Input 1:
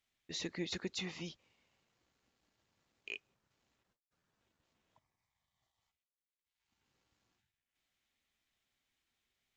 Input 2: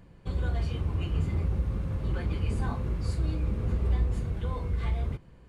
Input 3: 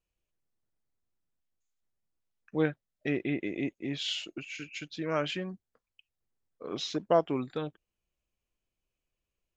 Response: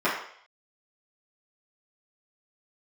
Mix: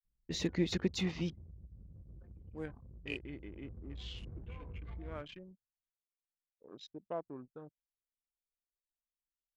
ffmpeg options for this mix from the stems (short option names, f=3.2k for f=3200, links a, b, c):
-filter_complex "[0:a]afwtdn=0.00141,lowshelf=f=430:g=11,volume=1dB[a];[1:a]highshelf=f=5.5k:g=5.5,acompressor=threshold=-27dB:ratio=12,adelay=50,volume=-14dB,afade=t=in:st=3.47:d=0.8:silence=0.446684[b];[2:a]afwtdn=0.00794,volume=-15.5dB[c];[a][b][c]amix=inputs=3:normalize=0,anlmdn=0.001"